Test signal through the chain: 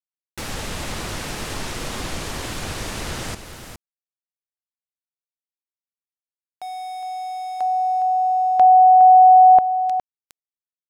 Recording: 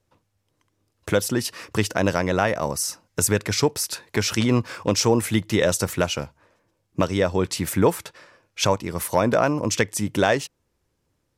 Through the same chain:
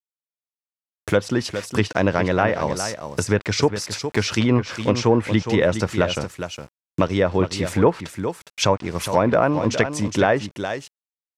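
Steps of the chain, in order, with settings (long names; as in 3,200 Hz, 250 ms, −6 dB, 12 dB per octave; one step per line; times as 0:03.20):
centre clipping without the shift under −37 dBFS
single-tap delay 412 ms −9.5 dB
treble cut that deepens with the level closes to 1,900 Hz, closed at −14 dBFS
level +2 dB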